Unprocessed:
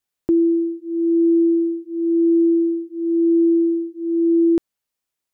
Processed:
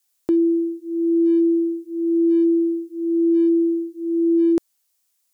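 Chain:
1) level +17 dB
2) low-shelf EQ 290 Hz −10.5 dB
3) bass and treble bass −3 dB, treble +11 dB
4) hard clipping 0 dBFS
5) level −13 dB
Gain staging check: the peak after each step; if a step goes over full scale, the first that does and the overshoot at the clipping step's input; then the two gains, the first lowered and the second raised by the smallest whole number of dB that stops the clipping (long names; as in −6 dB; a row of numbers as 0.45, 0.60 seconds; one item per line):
+5.5, +1.0, +8.5, 0.0, −13.0 dBFS
step 1, 8.5 dB
step 1 +8 dB, step 5 −4 dB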